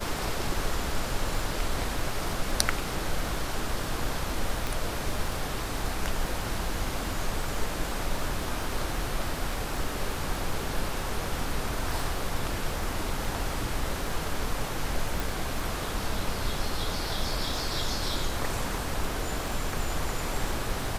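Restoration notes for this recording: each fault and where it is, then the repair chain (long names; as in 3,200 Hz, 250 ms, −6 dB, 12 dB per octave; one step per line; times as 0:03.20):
surface crackle 23 per second −32 dBFS
0:04.67: click
0:15.20: click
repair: click removal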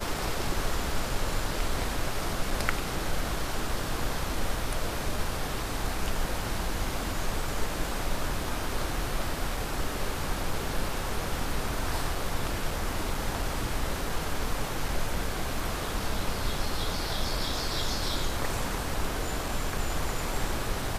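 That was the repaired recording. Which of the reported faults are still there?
0:04.67: click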